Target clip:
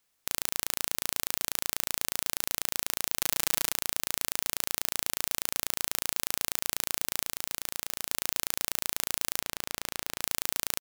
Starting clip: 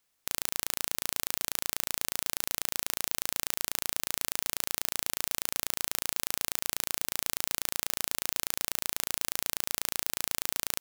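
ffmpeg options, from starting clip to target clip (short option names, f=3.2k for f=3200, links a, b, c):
-filter_complex "[0:a]asplit=3[a][b][c];[a]afade=t=out:st=3.21:d=0.02[d];[b]aecho=1:1:6.1:0.97,afade=t=in:st=3.21:d=0.02,afade=t=out:st=3.71:d=0.02[e];[c]afade=t=in:st=3.71:d=0.02[f];[d][e][f]amix=inputs=3:normalize=0,asettb=1/sr,asplit=3[g][h][i];[g]atrim=end=7.244[j];[h]atrim=start=7.24:end=8.1,asetpts=PTS-STARTPTS,afade=t=in:d=0.004:c=qsin,afade=t=out:st=0.856:d=0.004:c=qsin,asoftclip=type=hard:threshold=-6.5dB[k];[i]atrim=start=8.096[l];[j][k]acrossfade=d=0.004:c1=hsin:c2=qsin[m];[m][l]acrossfade=d=0.004:c1=qsin:c2=hsin,asettb=1/sr,asplit=3[n][o][p];[n]atrim=end=9.404[q];[o]atrim=start=9.4:end=10.21,asetpts=PTS-STARTPTS,afade=t=in:d=0.004:c=qsin,afade=t=out:st=0.806:d=0.004:c=qsin,highshelf=f=5.2k:g=-8[r];[p]atrim=start=10.206[s];[q][r]acrossfade=d=0.004:c1=hsin:c2=qsin[t];[t][s]acrossfade=d=0.004:c1=qsin:c2=hsin,volume=1dB"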